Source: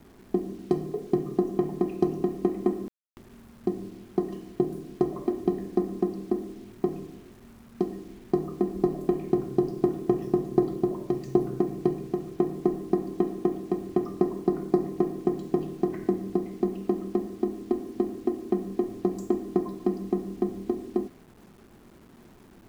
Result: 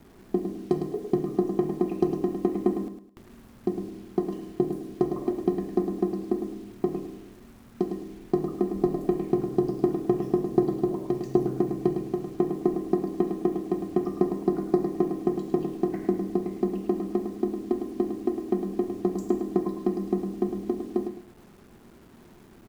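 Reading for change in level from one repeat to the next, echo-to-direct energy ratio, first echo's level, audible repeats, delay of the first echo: −11.0 dB, −7.0 dB, −7.5 dB, 3, 106 ms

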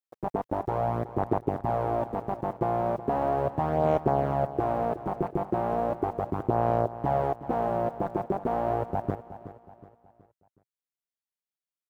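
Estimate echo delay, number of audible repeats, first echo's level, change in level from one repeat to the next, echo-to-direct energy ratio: 370 ms, 3, −14.0 dB, −8.0 dB, −13.0 dB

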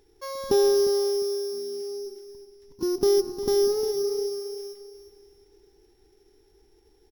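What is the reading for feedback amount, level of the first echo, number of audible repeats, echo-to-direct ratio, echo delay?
32%, −12.0 dB, 3, −11.5 dB, 355 ms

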